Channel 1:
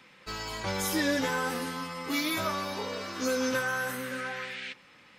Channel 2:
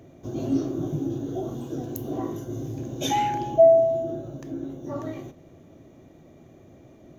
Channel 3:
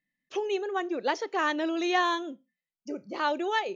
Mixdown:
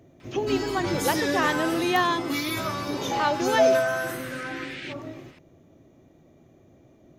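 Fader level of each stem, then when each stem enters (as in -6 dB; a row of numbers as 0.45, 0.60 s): +1.0, -5.0, +2.5 dB; 0.20, 0.00, 0.00 s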